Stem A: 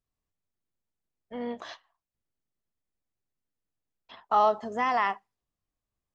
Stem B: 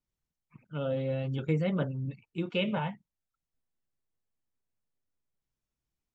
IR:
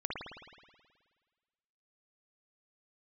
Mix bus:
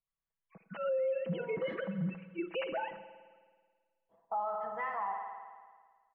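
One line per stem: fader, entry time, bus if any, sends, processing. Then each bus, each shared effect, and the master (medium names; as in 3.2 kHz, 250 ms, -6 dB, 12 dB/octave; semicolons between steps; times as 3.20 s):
-17.0 dB, 0.00 s, send -4 dB, LFO low-pass sine 0.69 Hz 380–1900 Hz
-2.0 dB, 0.00 s, send -14 dB, formants replaced by sine waves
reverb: on, RT60 1.6 s, pre-delay 53 ms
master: peaking EQ 300 Hz -13.5 dB 0.4 oct; comb 6.1 ms, depth 70%; peak limiter -27.5 dBFS, peak gain reduction 11.5 dB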